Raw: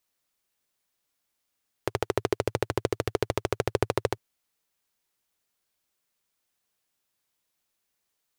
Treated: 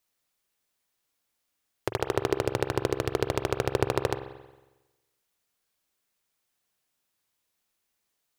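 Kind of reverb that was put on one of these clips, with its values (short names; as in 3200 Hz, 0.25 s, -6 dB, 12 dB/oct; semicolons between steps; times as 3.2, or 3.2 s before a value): spring tank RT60 1.1 s, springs 45 ms, chirp 20 ms, DRR 8 dB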